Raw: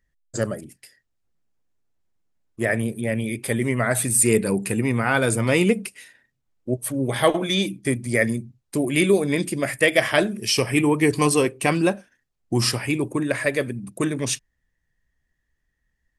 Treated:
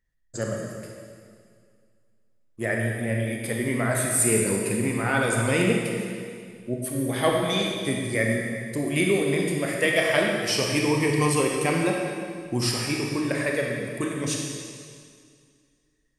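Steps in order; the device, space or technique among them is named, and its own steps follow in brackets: stairwell (reverberation RT60 2.1 s, pre-delay 26 ms, DRR -0.5 dB); trim -5.5 dB

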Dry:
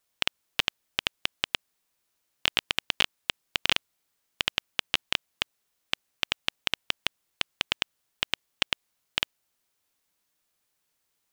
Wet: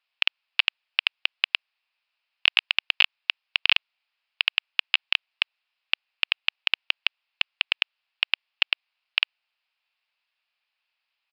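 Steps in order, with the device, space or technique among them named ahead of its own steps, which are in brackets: musical greeting card (resampled via 11.025 kHz; high-pass 700 Hz 24 dB/octave; peaking EQ 2.6 kHz +11 dB 0.49 oct); trim -1.5 dB

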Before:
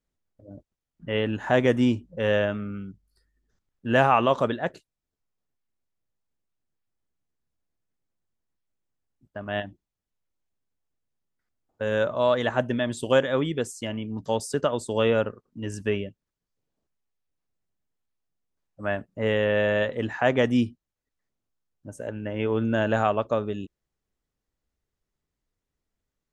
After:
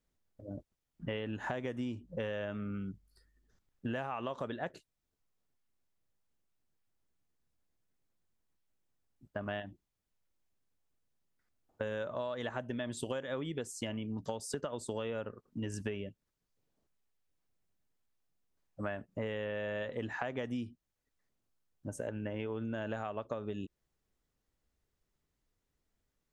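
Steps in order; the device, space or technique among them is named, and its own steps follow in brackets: serial compression, leveller first (compression 3:1, threshold -24 dBFS, peak gain reduction 8 dB; compression 6:1, threshold -36 dBFS, peak gain reduction 14 dB); trim +1 dB

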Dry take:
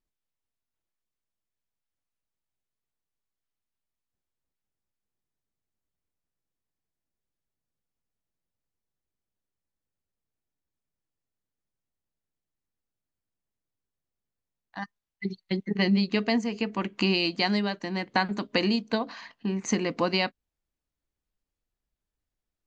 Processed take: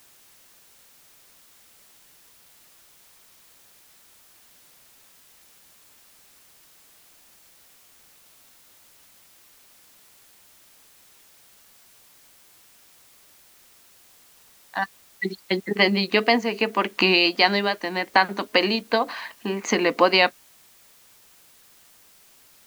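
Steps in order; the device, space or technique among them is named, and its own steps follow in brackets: dictaphone (band-pass 390–4300 Hz; level rider gain up to 11.5 dB; wow and flutter; white noise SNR 26 dB)

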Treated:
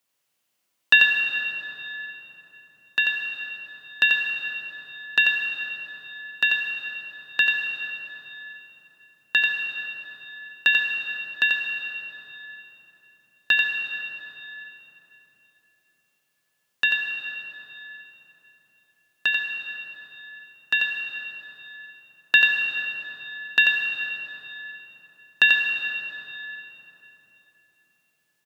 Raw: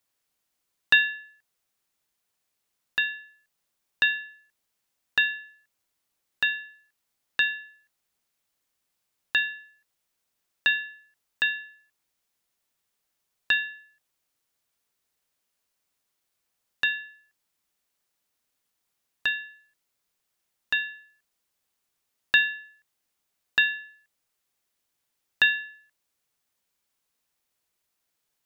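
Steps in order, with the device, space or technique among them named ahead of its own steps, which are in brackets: PA in a hall (high-pass 110 Hz 24 dB/octave; peaking EQ 2.8 kHz +4.5 dB 0.3 oct; delay 89 ms -6.5 dB; reverberation RT60 3.9 s, pre-delay 68 ms, DRR 3 dB); trim +1.5 dB

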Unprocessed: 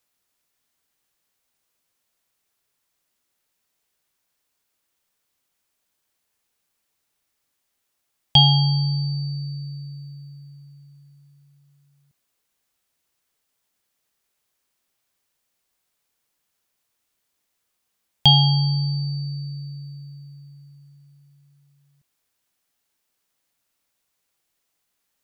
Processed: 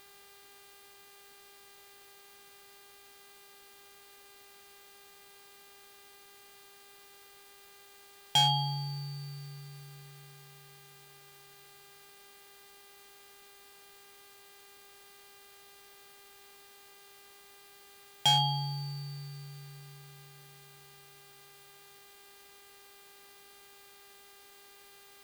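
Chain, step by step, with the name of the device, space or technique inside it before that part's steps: aircraft radio (band-pass 310–2400 Hz; hard clipper -18.5 dBFS, distortion -11 dB; mains buzz 400 Hz, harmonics 12, -58 dBFS -2 dB/octave; white noise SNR 18 dB); trim -1.5 dB

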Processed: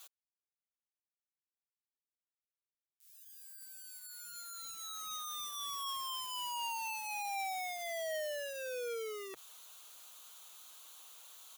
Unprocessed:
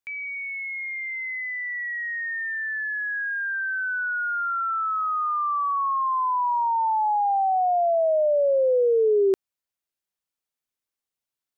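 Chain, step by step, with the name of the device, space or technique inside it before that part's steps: elliptic band-pass 130–1300 Hz, stop band 70 dB; differentiator; budget class-D amplifier (dead-time distortion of 0.29 ms; zero-crossing glitches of -44 dBFS); comb 6.4 ms, depth 35%; dynamic bell 310 Hz, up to -5 dB, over -59 dBFS, Q 0.89; trim +5 dB

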